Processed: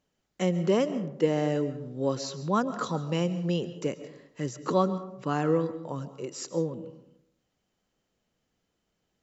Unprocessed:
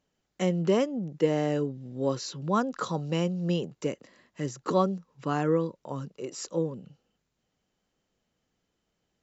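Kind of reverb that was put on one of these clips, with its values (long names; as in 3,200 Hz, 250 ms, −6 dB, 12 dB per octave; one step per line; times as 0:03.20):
comb and all-pass reverb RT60 0.78 s, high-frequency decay 0.45×, pre-delay 95 ms, DRR 12.5 dB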